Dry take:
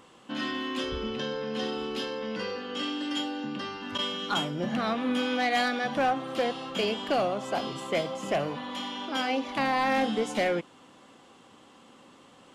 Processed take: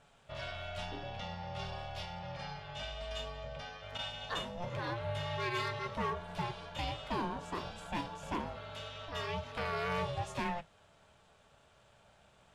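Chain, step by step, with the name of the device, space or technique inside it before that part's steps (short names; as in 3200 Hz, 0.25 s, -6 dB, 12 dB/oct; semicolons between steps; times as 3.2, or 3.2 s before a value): alien voice (ring modulator 350 Hz; flange 0.2 Hz, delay 6.8 ms, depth 9.6 ms, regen -61%); gain -2.5 dB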